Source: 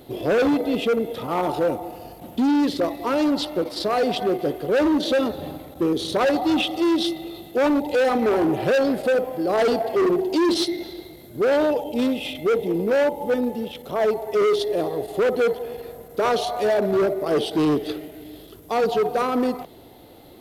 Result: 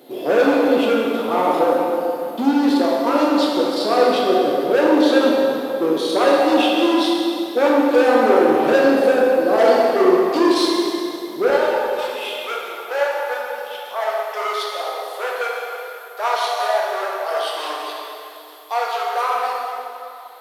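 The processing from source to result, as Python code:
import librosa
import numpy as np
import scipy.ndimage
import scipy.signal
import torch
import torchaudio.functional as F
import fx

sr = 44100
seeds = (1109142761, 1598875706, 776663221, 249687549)

y = fx.highpass(x, sr, hz=fx.steps((0.0, 220.0), (11.5, 680.0)), slope=24)
y = fx.dynamic_eq(y, sr, hz=830.0, q=1.1, threshold_db=-34.0, ratio=4.0, max_db=4)
y = fx.rev_plate(y, sr, seeds[0], rt60_s=2.7, hf_ratio=0.75, predelay_ms=0, drr_db=-4.0)
y = y * 10.0 ** (-1.0 / 20.0)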